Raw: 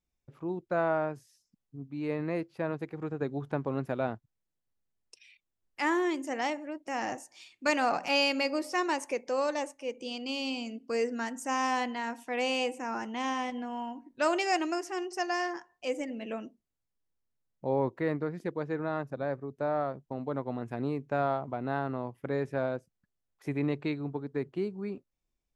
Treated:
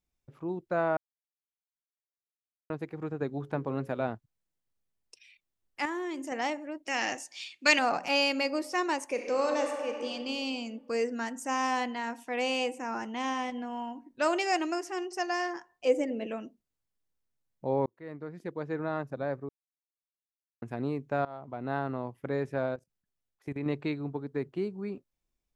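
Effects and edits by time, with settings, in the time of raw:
0:00.97–0:02.70: silence
0:03.28–0:04.02: mains-hum notches 60/120/180/240/300/360/420/480/540 Hz
0:05.85–0:06.32: downward compressor 3 to 1, threshold −33 dBFS
0:06.85–0:07.79: meter weighting curve D
0:09.06–0:10.10: thrown reverb, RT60 2 s, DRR 2 dB
0:15.85–0:16.27: parametric band 430 Hz +9.5 dB 1.2 octaves
0:17.86–0:18.79: fade in
0:19.49–0:20.62: silence
0:21.25–0:21.74: fade in linear, from −20.5 dB
0:22.74–0:23.66: output level in coarse steps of 17 dB

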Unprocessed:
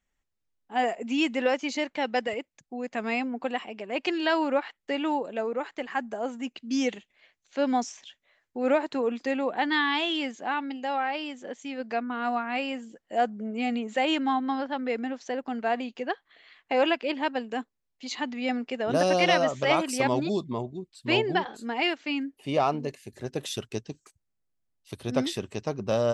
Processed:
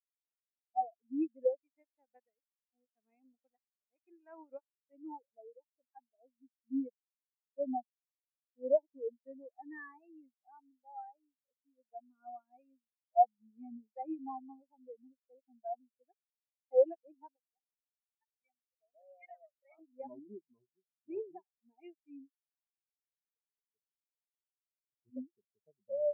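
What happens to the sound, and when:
0:01.61–0:04.93: compressing power law on the bin magnitudes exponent 0.45
0:17.36–0:19.79: high-pass filter 1,200 Hz 6 dB per octave
0:22.39–0:25.08: fade in
whole clip: Chebyshev low-pass filter 2,600 Hz, order 4; every bin expanded away from the loudest bin 4 to 1; level −4.5 dB

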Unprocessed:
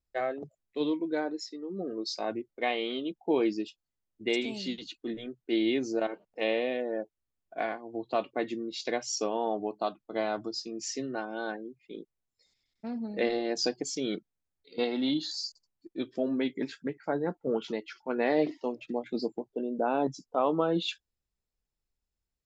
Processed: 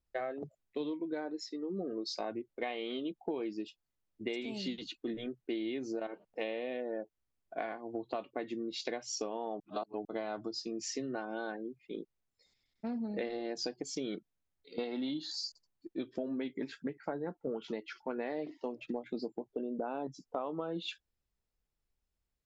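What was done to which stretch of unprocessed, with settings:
0:09.60–0:10.05: reverse
whole clip: high-shelf EQ 4,700 Hz −7 dB; downward compressor 10 to 1, threshold −35 dBFS; level +1.5 dB

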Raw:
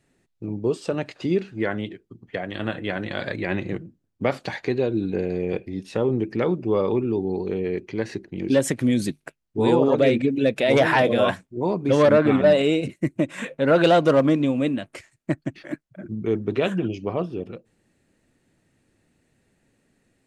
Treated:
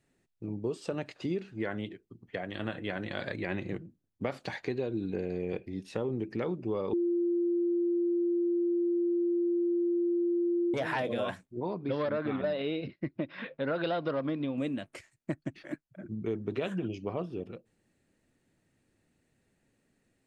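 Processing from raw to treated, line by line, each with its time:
0:06.93–0:10.74: beep over 346 Hz −9 dBFS
0:11.60–0:14.58: Chebyshev low-pass with heavy ripple 5,200 Hz, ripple 3 dB
whole clip: downward compressor, threshold −21 dBFS; level −7 dB

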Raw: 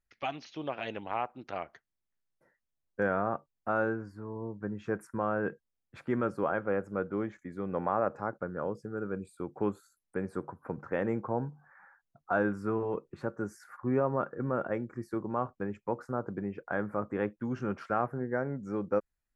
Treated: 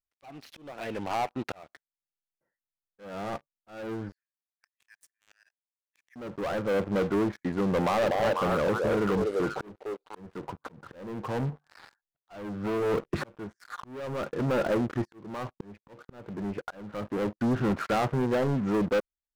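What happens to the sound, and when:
0:04.12–0:06.16: Chebyshev high-pass with heavy ripple 1,700 Hz, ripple 3 dB
0:07.78–0:10.29: echo through a band-pass that steps 245 ms, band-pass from 540 Hz, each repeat 1.4 octaves, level −1 dB
0:12.34–0:13.36: multiband upward and downward compressor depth 100%
whole clip: treble cut that deepens with the level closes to 1,100 Hz, closed at −29 dBFS; leveller curve on the samples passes 5; volume swells 747 ms; level −4.5 dB

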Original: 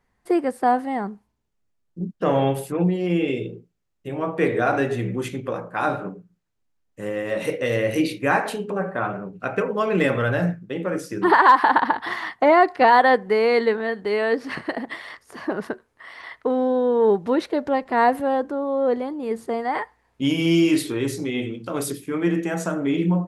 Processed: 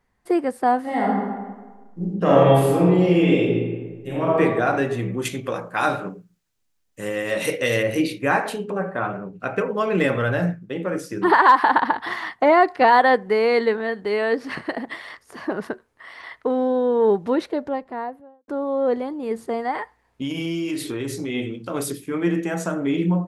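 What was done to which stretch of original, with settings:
0:00.80–0:04.39: thrown reverb, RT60 1.4 s, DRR −5.5 dB
0:05.25–0:07.83: high-shelf EQ 2,200 Hz +10.5 dB
0:17.22–0:18.48: fade out and dull
0:19.71–0:21.30: downward compressor, threshold −23 dBFS

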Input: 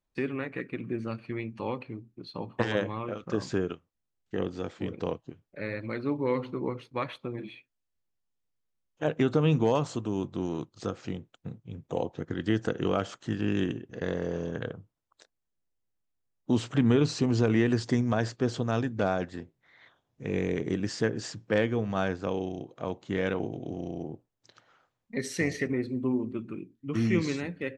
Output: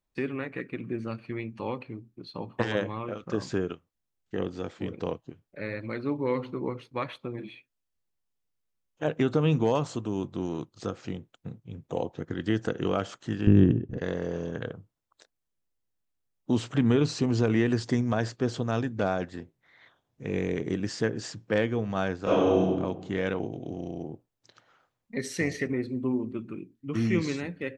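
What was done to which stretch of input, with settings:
0:13.47–0:13.98: spectral tilt −4.5 dB per octave
0:22.22–0:22.65: thrown reverb, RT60 1.2 s, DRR −10.5 dB

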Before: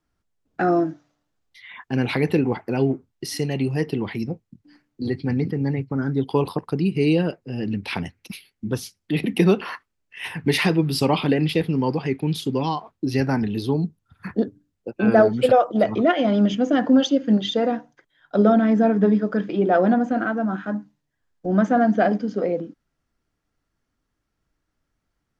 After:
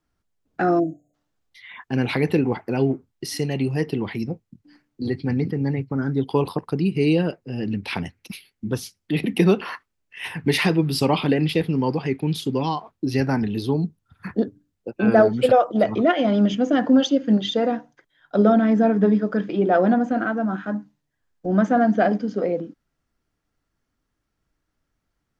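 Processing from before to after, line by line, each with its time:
0:00.79–0:01.14: time-frequency box erased 750–6,400 Hz

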